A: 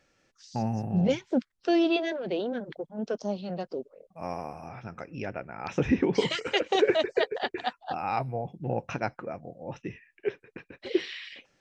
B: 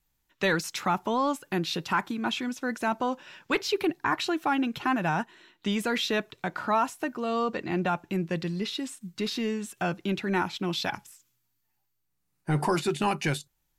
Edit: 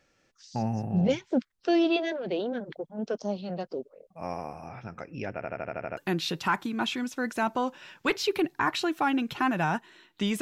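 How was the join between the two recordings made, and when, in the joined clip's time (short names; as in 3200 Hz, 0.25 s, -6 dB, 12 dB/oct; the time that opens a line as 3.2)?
A
5.33 stutter in place 0.08 s, 8 plays
5.97 switch to B from 1.42 s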